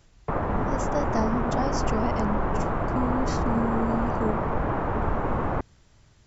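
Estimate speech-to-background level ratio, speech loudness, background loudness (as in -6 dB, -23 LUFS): -3.5 dB, -31.0 LUFS, -27.5 LUFS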